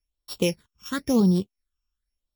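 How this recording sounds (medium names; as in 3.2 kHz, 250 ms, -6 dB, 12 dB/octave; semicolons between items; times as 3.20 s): a buzz of ramps at a fixed pitch in blocks of 8 samples; phasing stages 8, 0.95 Hz, lowest notch 570–2100 Hz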